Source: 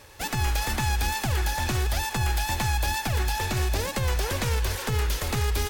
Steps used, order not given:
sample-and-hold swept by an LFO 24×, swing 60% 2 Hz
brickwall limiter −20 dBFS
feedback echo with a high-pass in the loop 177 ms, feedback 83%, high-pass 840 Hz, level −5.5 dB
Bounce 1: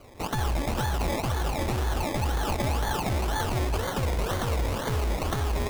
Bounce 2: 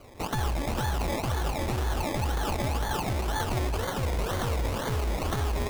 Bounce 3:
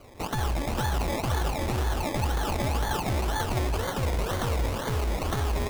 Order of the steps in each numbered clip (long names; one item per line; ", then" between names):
feedback echo with a high-pass in the loop, then sample-and-hold swept by an LFO, then brickwall limiter
feedback echo with a high-pass in the loop, then brickwall limiter, then sample-and-hold swept by an LFO
brickwall limiter, then feedback echo with a high-pass in the loop, then sample-and-hold swept by an LFO